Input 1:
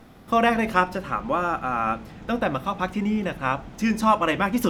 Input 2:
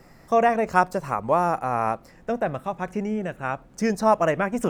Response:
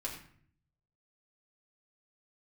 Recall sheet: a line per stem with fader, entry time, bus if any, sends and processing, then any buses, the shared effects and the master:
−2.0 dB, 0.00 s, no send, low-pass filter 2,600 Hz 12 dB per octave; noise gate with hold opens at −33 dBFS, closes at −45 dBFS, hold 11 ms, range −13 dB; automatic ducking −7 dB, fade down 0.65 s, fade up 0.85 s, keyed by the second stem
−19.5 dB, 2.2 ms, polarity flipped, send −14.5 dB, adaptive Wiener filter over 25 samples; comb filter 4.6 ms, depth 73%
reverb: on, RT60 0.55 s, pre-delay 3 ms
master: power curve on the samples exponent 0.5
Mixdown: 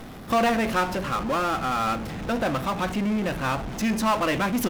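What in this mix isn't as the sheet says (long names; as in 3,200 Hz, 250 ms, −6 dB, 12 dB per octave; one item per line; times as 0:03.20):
stem 1: missing low-pass filter 2,600 Hz 12 dB per octave
stem 2 −19.5 dB → −30.0 dB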